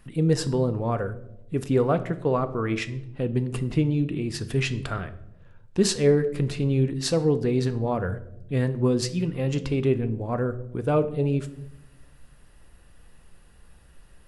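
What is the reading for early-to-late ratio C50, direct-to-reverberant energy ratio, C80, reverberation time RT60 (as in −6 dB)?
15.0 dB, 10.0 dB, 18.5 dB, 0.85 s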